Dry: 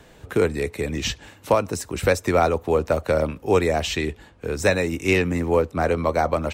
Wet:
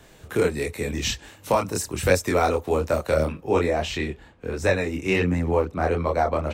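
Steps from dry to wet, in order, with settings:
multi-voice chorus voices 2, 1.4 Hz, delay 25 ms, depth 3.2 ms
high-shelf EQ 4,800 Hz +6 dB, from 0:03.32 −7.5 dB
level +1.5 dB

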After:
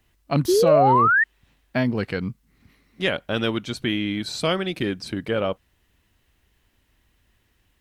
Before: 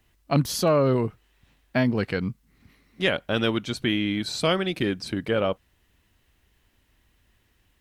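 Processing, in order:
sound drawn into the spectrogram rise, 0:00.48–0:01.24, 340–1,900 Hz −17 dBFS

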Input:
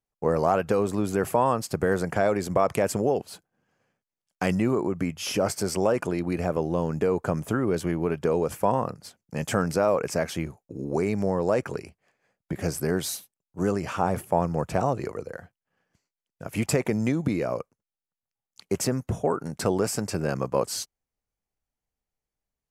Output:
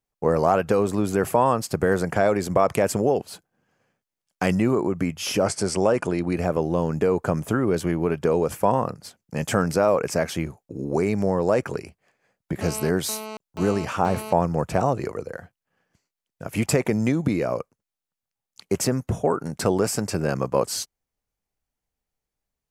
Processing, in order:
0:05.44–0:06.36: Butterworth low-pass 11,000 Hz 96 dB per octave
0:12.61–0:14.33: phone interference −38 dBFS
level +3 dB

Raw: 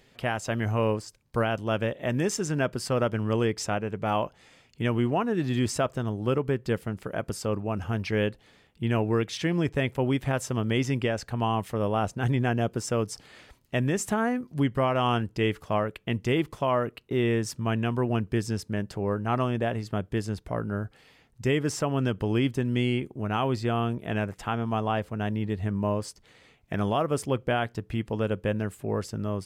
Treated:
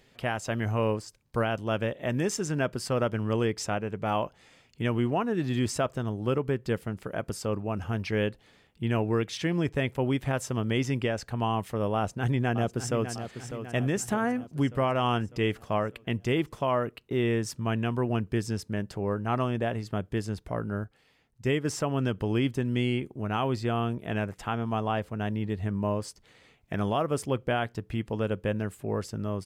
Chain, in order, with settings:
0:11.95–0:13.11: delay throw 600 ms, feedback 55%, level −10 dB
0:20.84–0:21.65: expander for the loud parts 1.5 to 1, over −35 dBFS
level −1.5 dB

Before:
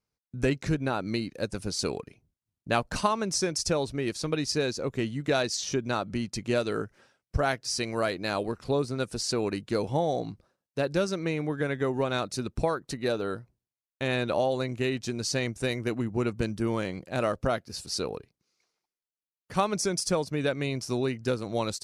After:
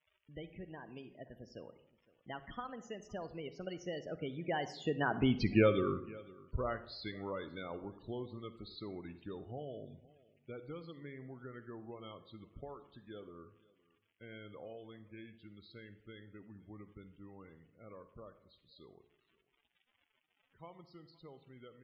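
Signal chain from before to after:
source passing by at 0:05.41, 52 m/s, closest 10 metres
in parallel at +2 dB: downward compressor, threshold −53 dBFS, peak gain reduction 25 dB
on the sum: surface crackle 94 per second −51 dBFS
high shelf with overshoot 4,600 Hz −11 dB, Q 1.5
single-tap delay 513 ms −22.5 dB
spectral peaks only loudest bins 32
on a send at −12.5 dB: convolution reverb RT60 0.70 s, pre-delay 43 ms
on the sum: level +2.5 dB

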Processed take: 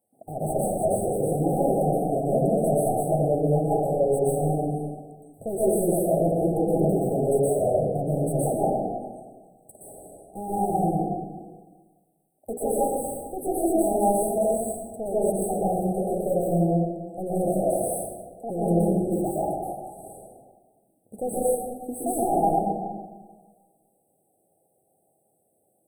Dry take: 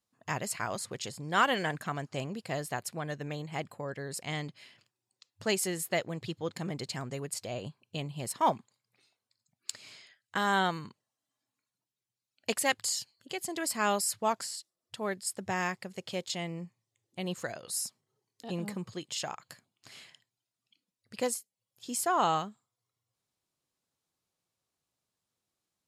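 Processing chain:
high-shelf EQ 11,000 Hz +4 dB
mains-hum notches 60/120/180/240/300/360/420/480 Hz
mid-hump overdrive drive 33 dB, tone 2,700 Hz, clips at −13 dBFS
linear-phase brick-wall band-stop 830–7,900 Hz
dense smooth reverb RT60 1.5 s, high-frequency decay 0.45×, pre-delay 110 ms, DRR −8.5 dB
level −7 dB

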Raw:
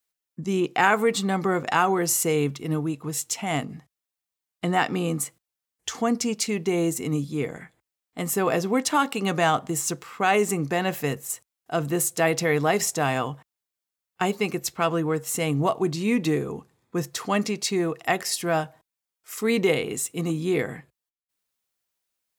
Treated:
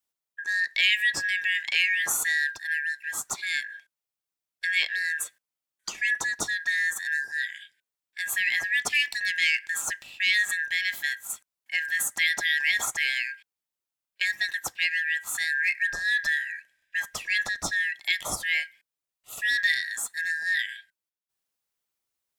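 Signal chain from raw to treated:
band-splitting scrambler in four parts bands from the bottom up 4123
level −3 dB

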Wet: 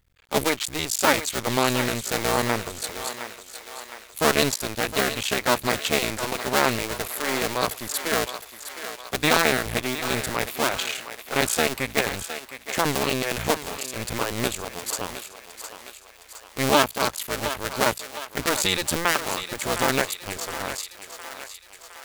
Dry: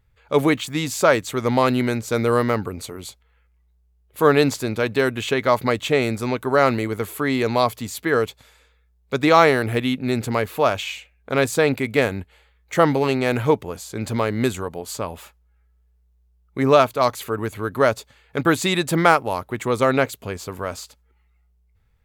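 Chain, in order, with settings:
sub-harmonics by changed cycles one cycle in 2, muted
high-shelf EQ 2,200 Hz +11 dB
on a send: feedback echo with a high-pass in the loop 712 ms, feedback 58%, high-pass 470 Hz, level −10 dB
on the sum: level −4 dB

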